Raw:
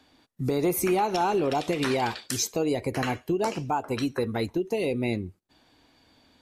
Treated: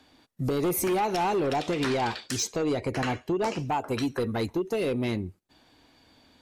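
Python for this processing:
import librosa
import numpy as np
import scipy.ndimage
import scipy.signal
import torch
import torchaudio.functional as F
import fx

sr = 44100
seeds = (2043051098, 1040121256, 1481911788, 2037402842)

y = fx.lowpass(x, sr, hz=7900.0, slope=12, at=(1.56, 3.59))
y = fx.fold_sine(y, sr, drive_db=5, ceiling_db=-14.5)
y = y * librosa.db_to_amplitude(-7.5)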